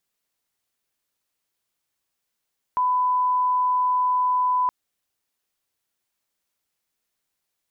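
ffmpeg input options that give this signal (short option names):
-f lavfi -i "sine=f=1000:d=1.92:r=44100,volume=0.06dB"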